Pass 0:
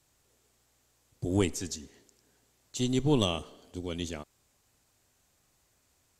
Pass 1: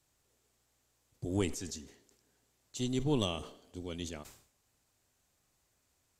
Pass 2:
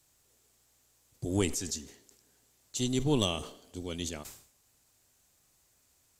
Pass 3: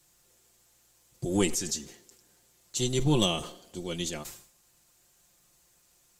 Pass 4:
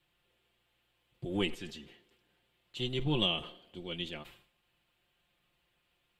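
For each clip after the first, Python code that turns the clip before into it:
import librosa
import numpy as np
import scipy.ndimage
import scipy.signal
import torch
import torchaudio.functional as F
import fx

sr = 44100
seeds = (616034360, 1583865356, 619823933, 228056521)

y1 = fx.sustainer(x, sr, db_per_s=100.0)
y1 = y1 * 10.0 ** (-5.5 / 20.0)
y2 = fx.high_shelf(y1, sr, hz=4800.0, db=7.5)
y2 = y2 * 10.0 ** (3.0 / 20.0)
y3 = y2 + 0.65 * np.pad(y2, (int(5.7 * sr / 1000.0), 0))[:len(y2)]
y3 = y3 * 10.0 ** (2.5 / 20.0)
y4 = fx.high_shelf_res(y3, sr, hz=4400.0, db=-13.5, q=3.0)
y4 = y4 * 10.0 ** (-7.0 / 20.0)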